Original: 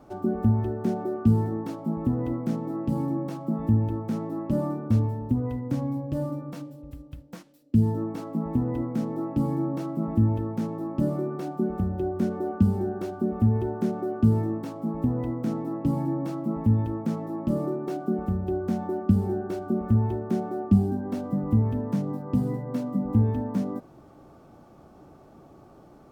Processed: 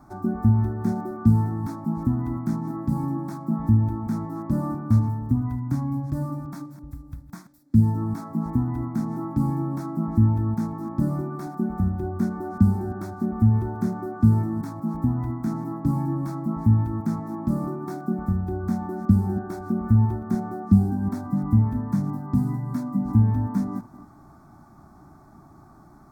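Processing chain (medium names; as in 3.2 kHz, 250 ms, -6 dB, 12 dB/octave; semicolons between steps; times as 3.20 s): chunks repeated in reverse 185 ms, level -13.5 dB; static phaser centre 1.2 kHz, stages 4; trim +4.5 dB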